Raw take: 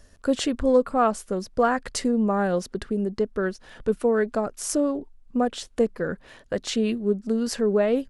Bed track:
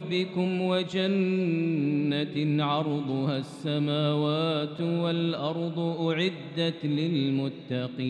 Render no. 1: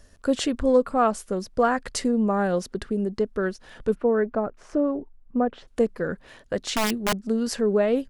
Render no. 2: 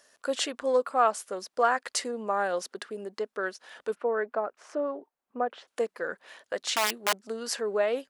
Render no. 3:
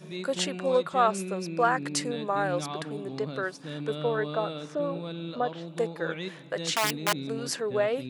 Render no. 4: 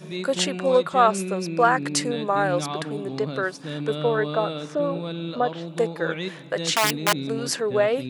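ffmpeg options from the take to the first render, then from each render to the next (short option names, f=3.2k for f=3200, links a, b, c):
-filter_complex "[0:a]asplit=3[a][b][c];[a]afade=t=out:st=3.94:d=0.02[d];[b]lowpass=1.7k,afade=t=in:st=3.94:d=0.02,afade=t=out:st=5.67:d=0.02[e];[c]afade=t=in:st=5.67:d=0.02[f];[d][e][f]amix=inputs=3:normalize=0,asettb=1/sr,asplit=3[g][h][i];[g]atrim=end=6.594[j];[h]atrim=start=6.59:end=7.24,asetpts=PTS-STARTPTS,afade=t=in:d=0.004:c=qsin,afade=t=out:st=0.646:d=0.004:c=qsin,aeval=exprs='(mod(7.08*val(0)+1,2)-1)/7.08':c=same[k];[i]atrim=start=7.236[l];[j][k]acrossfade=d=0.004:c1=hsin:c2=qsin[m];[m][l]acrossfade=d=0.004:c1=qsin:c2=hsin"
-af "highpass=620"
-filter_complex "[1:a]volume=-9.5dB[a];[0:a][a]amix=inputs=2:normalize=0"
-af "volume=5.5dB"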